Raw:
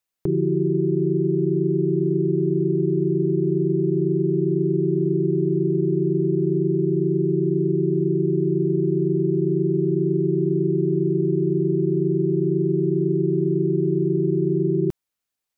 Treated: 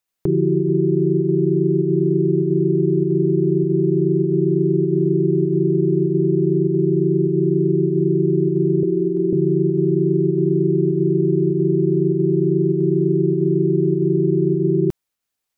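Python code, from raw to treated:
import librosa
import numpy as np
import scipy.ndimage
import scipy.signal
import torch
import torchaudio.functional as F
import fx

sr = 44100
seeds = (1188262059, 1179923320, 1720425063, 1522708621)

p1 = fx.ellip_highpass(x, sr, hz=180.0, order=4, stop_db=40, at=(8.83, 9.33))
p2 = fx.volume_shaper(p1, sr, bpm=99, per_beat=1, depth_db=-9, release_ms=75.0, shape='slow start')
p3 = p1 + (p2 * librosa.db_to_amplitude(-2.0))
y = p3 * librosa.db_to_amplitude(-1.5)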